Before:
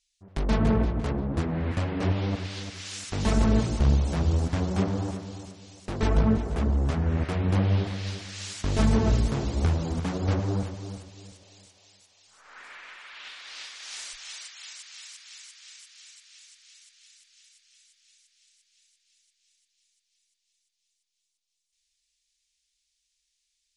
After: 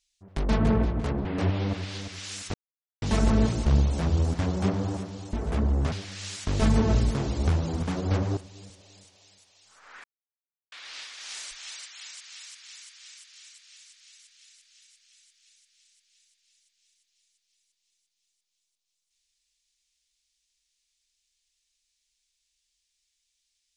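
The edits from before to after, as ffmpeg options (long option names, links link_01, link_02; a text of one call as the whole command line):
ffmpeg -i in.wav -filter_complex "[0:a]asplit=8[link_01][link_02][link_03][link_04][link_05][link_06][link_07][link_08];[link_01]atrim=end=1.252[link_09];[link_02]atrim=start=1.868:end=3.16,asetpts=PTS-STARTPTS,afade=type=out:start_time=1.288:duration=0.004:curve=hsin,apad=pad_dur=0.48[link_10];[link_03]atrim=start=3.16:end=5.472,asetpts=PTS-STARTPTS,afade=type=in:duration=0.004:curve=hsin[link_11];[link_04]atrim=start=6.368:end=6.962[link_12];[link_05]atrim=start=8.088:end=10.542[link_13];[link_06]atrim=start=10.988:end=12.66,asetpts=PTS-STARTPTS,afade=type=out:start_time=1.668:duration=0.004:curve=hsin[link_14];[link_07]atrim=start=12.66:end=13.34,asetpts=PTS-STARTPTS,volume=0[link_15];[link_08]atrim=start=13.34,asetpts=PTS-STARTPTS,afade=type=in:duration=0.004:curve=hsin[link_16];[link_10][link_11]concat=n=2:v=0:a=1[link_17];[link_09][link_17]acrossfade=duration=0.004:curve1=hsin:curve2=hsin[link_18];[link_18][link_12]acrossfade=duration=0.004:curve1=hsin:curve2=hsin[link_19];[link_19][link_13]acrossfade=duration=0.004:curve1=hsin:curve2=hsin[link_20];[link_14][link_15][link_16]concat=n=3:v=0:a=1[link_21];[link_20][link_21]acrossfade=duration=0.004:curve1=hsin:curve2=hsin" out.wav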